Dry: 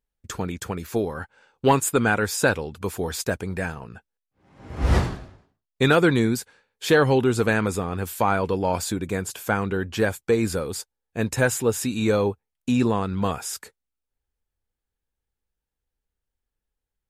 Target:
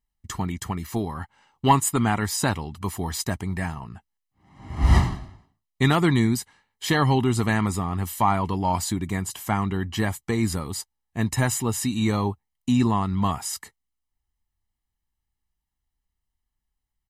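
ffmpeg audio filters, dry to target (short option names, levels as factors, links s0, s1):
-af "aecho=1:1:1:0.77,volume=0.841"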